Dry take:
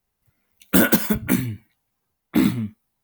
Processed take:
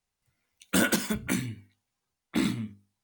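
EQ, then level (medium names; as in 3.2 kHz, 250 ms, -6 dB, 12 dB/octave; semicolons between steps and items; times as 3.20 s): Savitzky-Golay filter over 9 samples; treble shelf 2.1 kHz +8 dB; hum notches 50/100/150/200/250/300/350/400/450 Hz; -8.0 dB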